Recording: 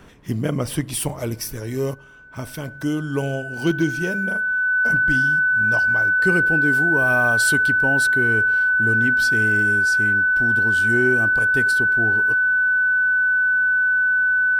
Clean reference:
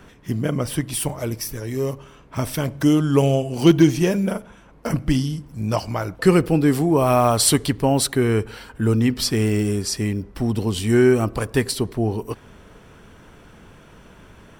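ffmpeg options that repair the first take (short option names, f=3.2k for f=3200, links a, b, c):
-af "bandreject=f=1.5k:w=30,asetnsamples=n=441:p=0,asendcmd='1.94 volume volume 7dB',volume=0dB"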